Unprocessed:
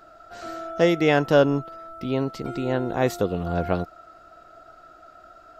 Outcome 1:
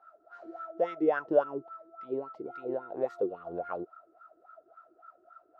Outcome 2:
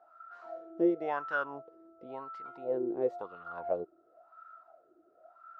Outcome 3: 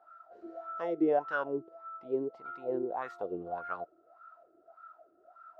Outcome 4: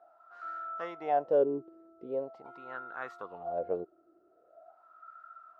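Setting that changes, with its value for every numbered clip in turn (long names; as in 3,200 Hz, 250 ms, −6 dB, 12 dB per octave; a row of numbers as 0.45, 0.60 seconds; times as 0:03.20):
LFO wah, speed: 3.6, 0.95, 1.7, 0.43 Hertz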